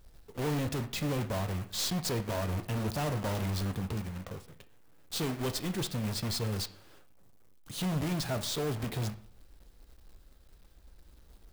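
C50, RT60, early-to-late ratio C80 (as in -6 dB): 14.5 dB, 0.50 s, 18.0 dB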